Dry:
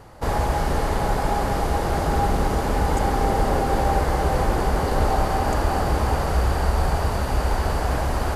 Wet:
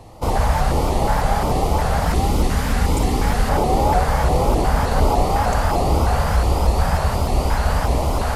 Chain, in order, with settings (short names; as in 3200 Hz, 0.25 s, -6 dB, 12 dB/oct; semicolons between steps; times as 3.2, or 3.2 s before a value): 2.07–3.49 EQ curve 290 Hz 0 dB, 700 Hz -7 dB, 1900 Hz +2 dB; on a send: flutter echo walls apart 10.2 m, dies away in 0.41 s; on the sum: LFO notch square 1.4 Hz 350–1600 Hz; shaped vibrato saw up 3.3 Hz, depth 160 cents; gain +3.5 dB